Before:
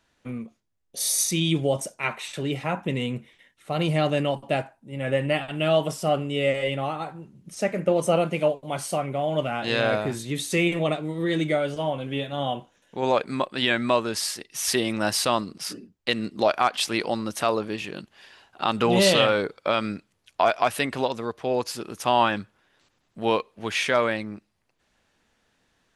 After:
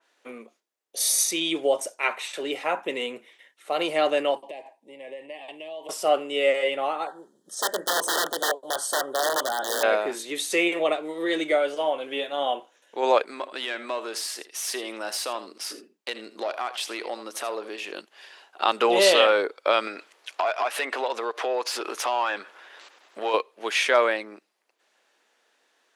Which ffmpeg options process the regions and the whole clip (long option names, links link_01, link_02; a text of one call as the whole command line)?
ffmpeg -i in.wav -filter_complex "[0:a]asettb=1/sr,asplit=3[link_01][link_02][link_03];[link_01]atrim=end=4.424[link_04];[link_02]atrim=start=4.42:end=5.89,asetpts=PTS-STARTPTS,afade=type=in:duration=0.004:curve=qsin,afade=type=out:start_time=1.466:duration=0.004:curve=qsin,highshelf=frequency=6400:gain=-7,acompressor=threshold=-35dB:ratio=10:attack=3.2:release=140:knee=1:detection=peak,asuperstop=centerf=1400:order=4:qfactor=1.8[link_05];[link_03]atrim=start=5.886[link_06];[link_04][link_05]acrossfade=duration=0.004:curve1=hsin:curve2=qsin[link_07];[link_07][link_06]acrossfade=duration=0.004:curve1=qsin:curve2=hsin,asettb=1/sr,asplit=3[link_08][link_09][link_10];[link_08]atrim=end=7.074[link_11];[link_09]atrim=start=7.07:end=9.83,asetpts=PTS-STARTPTS,afade=type=in:duration=0.004:curve=qsin,afade=type=out:start_time=2.756:duration=0.004:curve=qsin,equalizer=frequency=7700:width_type=o:width=0.41:gain=4.5,aeval=exprs='(mod(9.44*val(0)+1,2)-1)/9.44':channel_layout=same,asuperstop=centerf=2400:order=20:qfactor=2.1[link_12];[link_10]atrim=start=9.826[link_13];[link_11][link_12]acrossfade=duration=0.004:curve1=hsin:curve2=qsin[link_14];[link_14][link_13]acrossfade=duration=0.004:curve1=qsin:curve2=hsin,asettb=1/sr,asplit=3[link_15][link_16][link_17];[link_15]atrim=end=13.254[link_18];[link_16]atrim=start=13.25:end=17.92,asetpts=PTS-STARTPTS,afade=type=in:duration=0.004:curve=qsin,afade=type=out:start_time=4.666:duration=0.004:curve=qsin,acompressor=threshold=-32dB:ratio=2:attack=3.2:release=140:knee=1:detection=peak,aecho=1:1:81:0.188,atrim=end_sample=205947,aeval=exprs='(tanh(11.2*val(0)+0.25)-tanh(0.25))/11.2':channel_layout=same[link_19];[link_17]atrim=start=17.916[link_20];[link_18][link_19]acrossfade=duration=0.004:curve1=hsin:curve2=qsin[link_21];[link_21][link_20]acrossfade=duration=0.004:curve1=qsin:curve2=hsin,asettb=1/sr,asplit=3[link_22][link_23][link_24];[link_22]atrim=end=19.874[link_25];[link_23]atrim=start=19.87:end=23.34,asetpts=PTS-STARTPTS,afade=type=in:duration=0.004:curve=qsin,afade=type=out:start_time=3.466:duration=0.004:curve=qsin,acompressor=threshold=-38dB:ratio=4:attack=3.2:release=140:knee=1:detection=peak,asplit=2[link_26][link_27];[link_27]highpass=frequency=720:poles=1,volume=23dB,asoftclip=type=tanh:threshold=-14dB[link_28];[link_26][link_28]amix=inputs=2:normalize=0,lowpass=frequency=3200:poles=1,volume=-6dB[link_29];[link_24]atrim=start=23.336[link_30];[link_25][link_29]acrossfade=duration=0.004:curve1=hsin:curve2=qsin[link_31];[link_31][link_30]acrossfade=duration=0.004:curve1=qsin:curve2=hsin,highpass=frequency=360:width=0.5412,highpass=frequency=360:width=1.3066,adynamicequalizer=threshold=0.0141:dfrequency=2900:dqfactor=0.7:tfrequency=2900:tqfactor=0.7:attack=5:release=100:ratio=0.375:range=2:mode=cutabove:tftype=highshelf,volume=2.5dB" out.wav